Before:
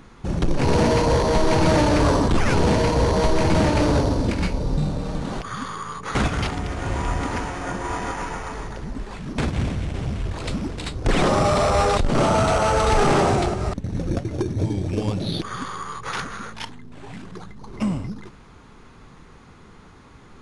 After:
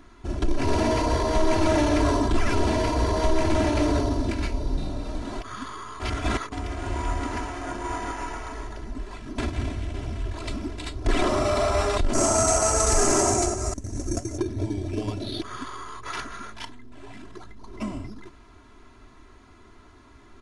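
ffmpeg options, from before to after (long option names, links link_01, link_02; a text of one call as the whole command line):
ffmpeg -i in.wav -filter_complex "[0:a]asettb=1/sr,asplit=3[link_01][link_02][link_03];[link_01]atrim=end=12.134[link_04];[link_02]atrim=start=12.13:end=14.38,asetpts=PTS-STARTPTS,afade=type=in:duration=0.004:curve=qsin,afade=type=out:start_time=2.246:duration=0.004:curve=qsin,highshelf=frequency=4900:width_type=q:width=3:gain=11.5[link_05];[link_03]atrim=start=14.376[link_06];[link_04][link_05]acrossfade=duration=0.004:curve1=hsin:curve2=qsin[link_07];[link_07][link_06]acrossfade=duration=0.004:curve1=qsin:curve2=hsin,asplit=3[link_08][link_09][link_10];[link_08]atrim=end=6.002[link_11];[link_09]atrim=start=5.998:end=6.522,asetpts=PTS-STARTPTS,areverse[link_12];[link_10]atrim=start=6.518[link_13];[link_11][link_12]acrossfade=duration=0.004:curve1=hsin:curve2=hsin[link_14];[link_14][link_13]acrossfade=duration=0.004:curve1=hsin:curve2=hsin,aecho=1:1:3:0.88,volume=-6.5dB" out.wav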